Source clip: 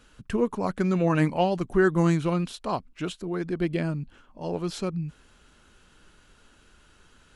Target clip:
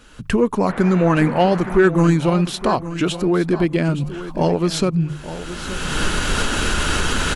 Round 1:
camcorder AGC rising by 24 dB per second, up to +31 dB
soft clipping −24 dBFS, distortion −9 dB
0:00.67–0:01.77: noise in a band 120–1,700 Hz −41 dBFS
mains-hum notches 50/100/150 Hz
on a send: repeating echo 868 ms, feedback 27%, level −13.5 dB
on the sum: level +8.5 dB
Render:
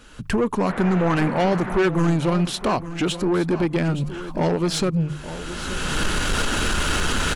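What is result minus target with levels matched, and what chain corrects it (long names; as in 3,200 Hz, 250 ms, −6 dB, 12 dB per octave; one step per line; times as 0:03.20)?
soft clipping: distortion +12 dB
camcorder AGC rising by 24 dB per second, up to +31 dB
soft clipping −13.5 dBFS, distortion −21 dB
0:00.67–0:01.77: noise in a band 120–1,700 Hz −41 dBFS
mains-hum notches 50/100/150 Hz
on a send: repeating echo 868 ms, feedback 27%, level −13.5 dB
on the sum: level +8.5 dB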